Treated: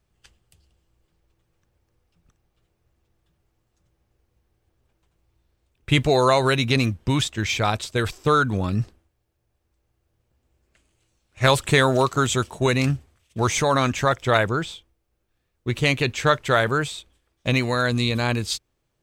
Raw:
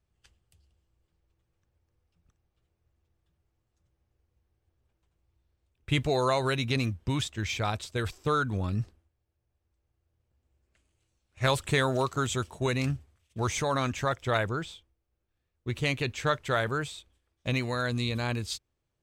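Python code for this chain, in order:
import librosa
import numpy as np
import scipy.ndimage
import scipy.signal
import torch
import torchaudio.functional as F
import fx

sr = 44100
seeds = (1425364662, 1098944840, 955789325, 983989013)

y = fx.peak_eq(x, sr, hz=78.0, db=-6.5, octaves=0.74)
y = F.gain(torch.from_numpy(y), 8.5).numpy()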